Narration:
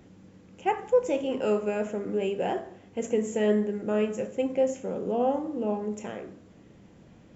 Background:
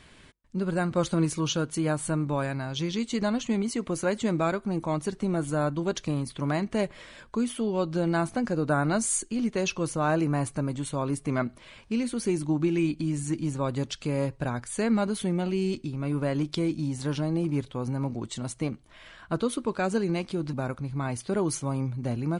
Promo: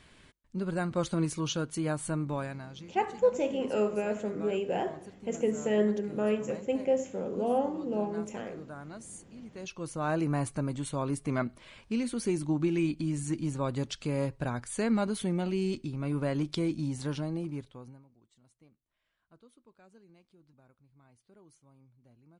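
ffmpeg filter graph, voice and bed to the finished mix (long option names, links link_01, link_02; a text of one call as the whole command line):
ffmpeg -i stem1.wav -i stem2.wav -filter_complex "[0:a]adelay=2300,volume=-2.5dB[link_01];[1:a]volume=12dB,afade=type=out:start_time=2.27:duration=0.59:silence=0.177828,afade=type=in:start_time=9.52:duration=0.79:silence=0.149624,afade=type=out:start_time=16.92:duration=1.12:silence=0.0354813[link_02];[link_01][link_02]amix=inputs=2:normalize=0" out.wav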